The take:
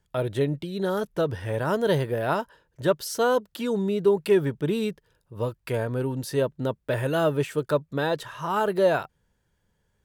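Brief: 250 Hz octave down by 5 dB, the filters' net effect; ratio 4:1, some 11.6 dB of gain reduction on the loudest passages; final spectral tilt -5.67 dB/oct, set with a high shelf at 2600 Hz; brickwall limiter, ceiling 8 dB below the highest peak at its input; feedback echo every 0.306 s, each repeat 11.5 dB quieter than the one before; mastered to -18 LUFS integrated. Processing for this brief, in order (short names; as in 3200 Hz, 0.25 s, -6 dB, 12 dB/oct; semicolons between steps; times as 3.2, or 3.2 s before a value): bell 250 Hz -7.5 dB; high shelf 2600 Hz -6.5 dB; compressor 4:1, threshold -32 dBFS; limiter -29.5 dBFS; feedback echo 0.306 s, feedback 27%, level -11.5 dB; gain +21 dB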